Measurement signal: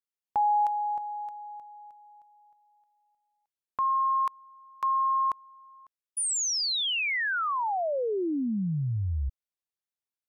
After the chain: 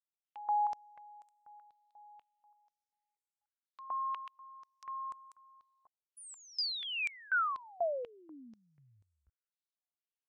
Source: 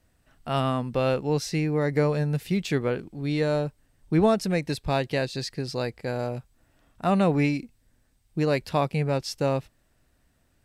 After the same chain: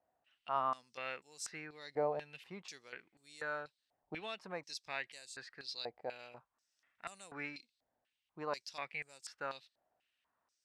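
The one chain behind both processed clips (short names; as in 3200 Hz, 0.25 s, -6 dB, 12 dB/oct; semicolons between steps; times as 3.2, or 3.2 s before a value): stepped band-pass 4.1 Hz 740–7900 Hz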